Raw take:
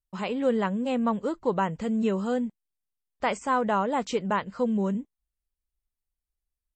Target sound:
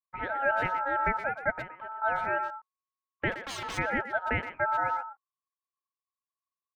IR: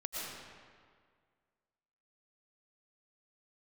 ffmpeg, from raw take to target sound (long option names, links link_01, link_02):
-filter_complex "[0:a]lowpass=frequency=1600:width=0.5412,lowpass=frequency=1600:width=1.3066,agate=range=-13dB:threshold=-40dB:ratio=16:detection=peak,asettb=1/sr,asplit=3[link_01][link_02][link_03];[link_01]atrim=end=1.504[link_04];[link_02]atrim=start=1.5:end=2.02,asetpts=PTS-STARTPTS,afade=type=in:duration=0.004:curve=qsin,afade=type=out:start_time=0.516:duration=0.004:curve=qsin,acompressor=threshold=-35dB:ratio=12[link_05];[link_03]atrim=start=2.016[link_06];[link_04][link_05]acrossfade=duration=0.004:curve1=hsin:curve2=qsin[link_07];[link_07][link_06]acrossfade=duration=0.004:curve1=qsin:curve2=hsin,asplit=3[link_08][link_09][link_10];[link_08]afade=type=out:start_time=3.31:duration=0.02[link_11];[link_09]aeval=exprs='0.0335*(abs(mod(val(0)/0.0335+3,4)-2)-1)':channel_layout=same,afade=type=in:start_time=3.31:duration=0.02,afade=type=out:start_time=3.77:duration=0.02[link_12];[link_10]afade=type=in:start_time=3.77:duration=0.02[link_13];[link_11][link_12][link_13]amix=inputs=3:normalize=0,aeval=exprs='val(0)*sin(2*PI*1100*n/s)':channel_layout=same,asplit=2[link_14][link_15];[link_15]adelay=120,highpass=300,lowpass=3400,asoftclip=type=hard:threshold=-22.5dB,volume=-10dB[link_16];[link_14][link_16]amix=inputs=2:normalize=0"